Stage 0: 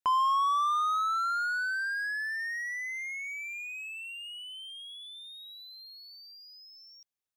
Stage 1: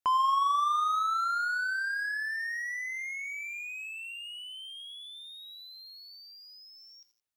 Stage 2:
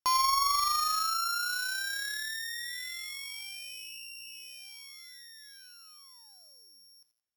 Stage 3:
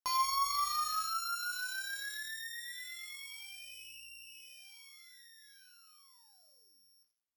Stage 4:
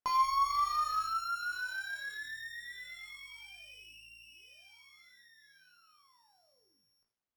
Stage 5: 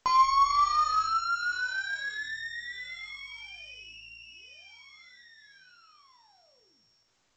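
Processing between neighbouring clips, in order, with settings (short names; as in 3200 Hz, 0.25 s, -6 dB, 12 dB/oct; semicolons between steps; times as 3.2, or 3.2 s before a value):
lo-fi delay 87 ms, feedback 55%, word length 10-bit, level -14 dB
sample sorter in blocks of 8 samples; added harmonics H 2 -18 dB, 3 -23 dB, 7 -32 dB, 8 -30 dB, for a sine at -18.5 dBFS
flutter echo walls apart 3.1 m, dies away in 0.22 s; gain -7 dB
LPF 1300 Hz 6 dB/oct; gain +6 dB
gain +6.5 dB; A-law 128 kbps 16000 Hz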